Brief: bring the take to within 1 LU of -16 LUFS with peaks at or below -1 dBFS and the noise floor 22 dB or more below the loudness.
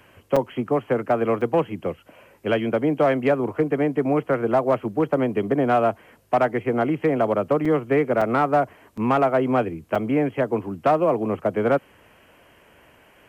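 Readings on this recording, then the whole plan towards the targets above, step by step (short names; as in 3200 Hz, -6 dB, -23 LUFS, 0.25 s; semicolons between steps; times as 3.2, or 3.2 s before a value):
clipped 0.2%; flat tops at -11.0 dBFS; dropouts 6; longest dropout 4.9 ms; loudness -22.5 LUFS; peak -11.0 dBFS; loudness target -16.0 LUFS
-> clip repair -11 dBFS; interpolate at 0.36/1.41/7.65/8.21/8.97/9.95, 4.9 ms; gain +6.5 dB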